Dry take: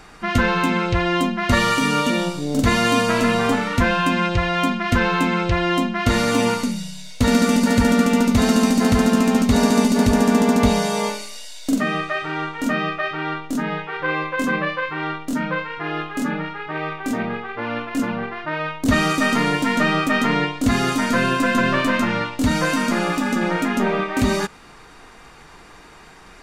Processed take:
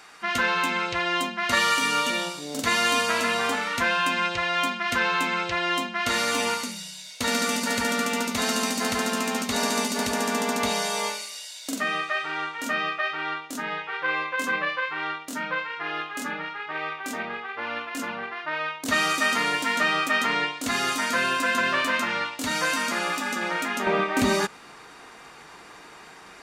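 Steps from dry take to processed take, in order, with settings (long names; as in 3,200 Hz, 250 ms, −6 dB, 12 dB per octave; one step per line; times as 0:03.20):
high-pass filter 1,200 Hz 6 dB per octave, from 0:23.87 300 Hz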